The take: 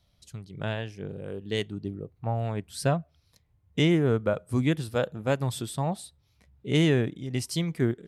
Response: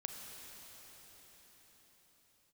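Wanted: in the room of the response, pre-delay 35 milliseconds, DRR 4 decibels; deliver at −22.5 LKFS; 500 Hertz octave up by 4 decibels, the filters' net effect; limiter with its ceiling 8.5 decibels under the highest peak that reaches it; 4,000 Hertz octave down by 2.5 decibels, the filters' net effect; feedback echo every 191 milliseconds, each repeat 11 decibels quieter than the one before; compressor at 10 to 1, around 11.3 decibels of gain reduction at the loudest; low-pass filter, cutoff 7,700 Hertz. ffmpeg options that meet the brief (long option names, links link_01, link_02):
-filter_complex "[0:a]lowpass=7700,equalizer=frequency=500:width_type=o:gain=5,equalizer=frequency=4000:width_type=o:gain=-3.5,acompressor=threshold=-28dB:ratio=10,alimiter=level_in=3dB:limit=-24dB:level=0:latency=1,volume=-3dB,aecho=1:1:191|382|573:0.282|0.0789|0.0221,asplit=2[link_01][link_02];[1:a]atrim=start_sample=2205,adelay=35[link_03];[link_02][link_03]afir=irnorm=-1:irlink=0,volume=-2.5dB[link_04];[link_01][link_04]amix=inputs=2:normalize=0,volume=13.5dB"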